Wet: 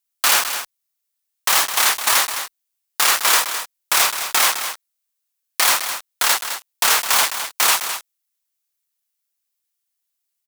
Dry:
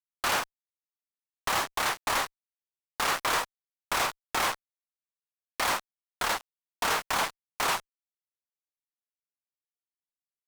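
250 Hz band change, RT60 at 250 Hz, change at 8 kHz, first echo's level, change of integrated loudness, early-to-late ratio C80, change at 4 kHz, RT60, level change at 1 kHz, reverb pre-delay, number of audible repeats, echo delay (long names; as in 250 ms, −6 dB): +0.5 dB, no reverb audible, +17.0 dB, −9.5 dB, +12.5 dB, no reverb audible, +13.5 dB, no reverb audible, +7.0 dB, no reverb audible, 1, 210 ms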